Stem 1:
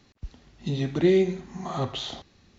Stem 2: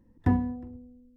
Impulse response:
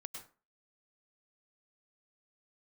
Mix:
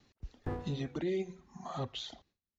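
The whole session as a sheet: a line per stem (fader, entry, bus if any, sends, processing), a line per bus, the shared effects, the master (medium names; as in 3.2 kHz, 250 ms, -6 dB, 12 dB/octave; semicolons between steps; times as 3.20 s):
-7.5 dB, 0.00 s, no send, reverb removal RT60 1.7 s; gate with hold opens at -55 dBFS
-2.0 dB, 0.20 s, no send, comb filter that takes the minimum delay 2.4 ms; auto duck -9 dB, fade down 0.50 s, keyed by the first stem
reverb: none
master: peak limiter -27 dBFS, peak gain reduction 9 dB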